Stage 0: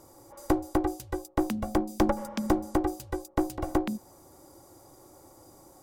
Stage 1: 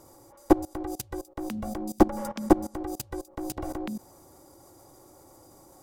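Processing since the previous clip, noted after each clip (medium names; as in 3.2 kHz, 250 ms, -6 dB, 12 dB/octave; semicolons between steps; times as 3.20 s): level held to a coarse grid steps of 21 dB; trim +9 dB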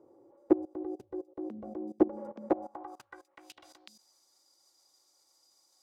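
wavefolder -8.5 dBFS; band-pass sweep 400 Hz -> 4.6 kHz, 2.32–3.79 s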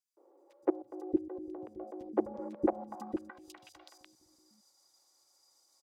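three bands offset in time highs, mids, lows 170/630 ms, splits 340/3300 Hz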